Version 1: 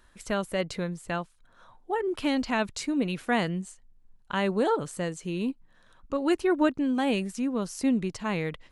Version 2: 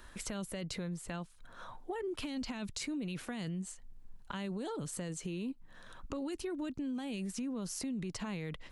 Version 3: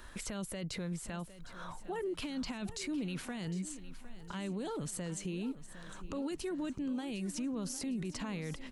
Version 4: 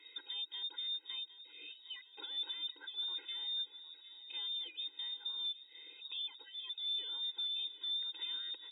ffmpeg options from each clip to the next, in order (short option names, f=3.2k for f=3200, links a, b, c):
-filter_complex "[0:a]acrossover=split=270|3000[a][b][c];[b]acompressor=threshold=-35dB:ratio=6[d];[a][d][c]amix=inputs=3:normalize=0,alimiter=level_in=5.5dB:limit=-24dB:level=0:latency=1:release=13,volume=-5.5dB,acompressor=threshold=-47dB:ratio=2.5,volume=6.5dB"
-af "alimiter=level_in=10dB:limit=-24dB:level=0:latency=1:release=18,volume=-10dB,aecho=1:1:758|1516|2274|3032|3790:0.188|0.0961|0.049|0.025|0.0127,volume=2.5dB"
-af "lowpass=f=3.2k:t=q:w=0.5098,lowpass=f=3.2k:t=q:w=0.6013,lowpass=f=3.2k:t=q:w=0.9,lowpass=f=3.2k:t=q:w=2.563,afreqshift=-3800,equalizer=f=125:t=o:w=1:g=-5,equalizer=f=250:t=o:w=1:g=10,equalizer=f=1k:t=o:w=1:g=-9,equalizer=f=2k:t=o:w=1:g=-3,afftfilt=real='re*eq(mod(floor(b*sr/1024/270),2),1)':imag='im*eq(mod(floor(b*sr/1024/270),2),1)':win_size=1024:overlap=0.75"